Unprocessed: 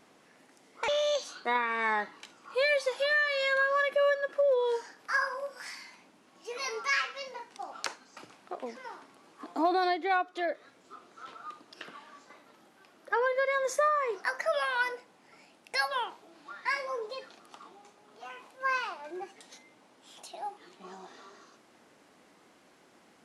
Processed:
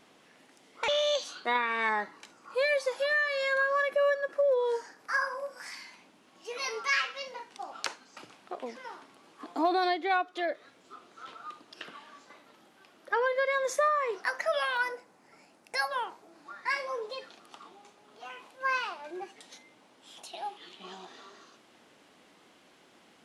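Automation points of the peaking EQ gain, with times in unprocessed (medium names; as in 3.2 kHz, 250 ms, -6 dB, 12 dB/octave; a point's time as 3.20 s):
peaking EQ 3.2 kHz 0.78 oct
+5 dB
from 1.89 s -4.5 dB
from 5.72 s +3.5 dB
from 14.77 s -6 dB
from 16.70 s +3.5 dB
from 20.33 s +14.5 dB
from 21.05 s +6 dB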